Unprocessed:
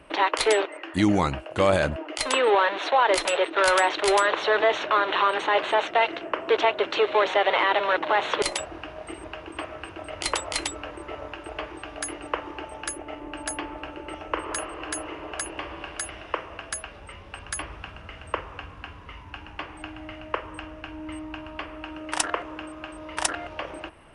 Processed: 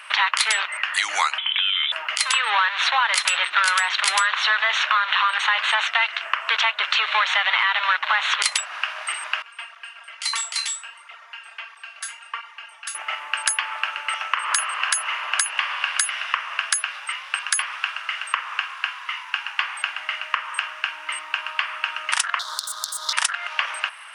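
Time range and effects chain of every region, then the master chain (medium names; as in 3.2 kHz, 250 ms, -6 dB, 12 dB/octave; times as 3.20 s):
1.38–1.92 s: high-pass 130 Hz 24 dB/octave + compression 12:1, threshold -32 dBFS + frequency inversion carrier 3.7 kHz
9.42–12.95 s: feedback comb 230 Hz, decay 0.28 s, mix 90% + cancelling through-zero flanger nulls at 1.5 Hz, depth 5.9 ms
22.39–23.13 s: self-modulated delay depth 0.32 ms + FFT filter 1.5 kHz 0 dB, 2.6 kHz -26 dB, 3.6 kHz +14 dB
whole clip: high-pass 1.2 kHz 24 dB/octave; compression 6:1, threshold -34 dBFS; loudness maximiser +20.5 dB; trim -3.5 dB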